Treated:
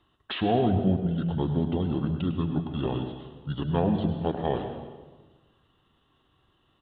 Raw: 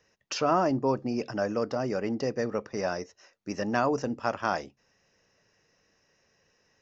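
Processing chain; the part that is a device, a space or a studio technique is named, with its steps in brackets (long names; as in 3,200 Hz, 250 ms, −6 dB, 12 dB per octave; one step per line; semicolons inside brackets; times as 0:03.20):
monster voice (pitch shifter −6 semitones; formants moved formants −3.5 semitones; low-shelf EQ 130 Hz +6.5 dB; single-tap delay 102 ms −13 dB; convolution reverb RT60 1.3 s, pre-delay 98 ms, DRR 7 dB)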